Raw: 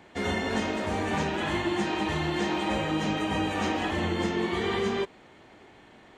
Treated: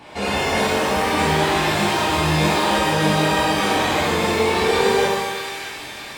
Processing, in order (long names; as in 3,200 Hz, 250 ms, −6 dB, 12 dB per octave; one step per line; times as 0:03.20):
formants moved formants +3 semitones
echo with a time of its own for lows and highs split 1,400 Hz, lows 115 ms, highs 619 ms, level −11 dB
in parallel at +1 dB: downward compressor, threshold −41 dBFS, peak gain reduction 16.5 dB
on the sum: parametric band 200 Hz −5.5 dB 0.41 octaves
reverb with rising layers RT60 1 s, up +12 semitones, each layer −8 dB, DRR −7 dB